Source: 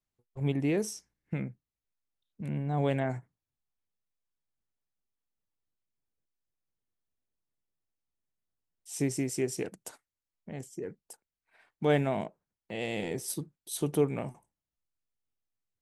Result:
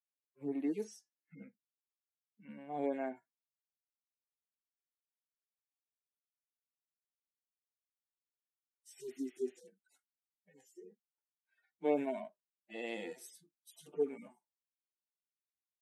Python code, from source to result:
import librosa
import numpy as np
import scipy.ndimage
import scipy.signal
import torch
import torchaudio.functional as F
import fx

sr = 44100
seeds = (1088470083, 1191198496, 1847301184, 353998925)

y = fx.hpss_only(x, sr, part='harmonic')
y = scipy.signal.sosfilt(scipy.signal.cheby1(3, 1.0, 260.0, 'highpass', fs=sr, output='sos'), y)
y = fx.noise_reduce_blind(y, sr, reduce_db=13)
y = y * 10.0 ** (-4.5 / 20.0)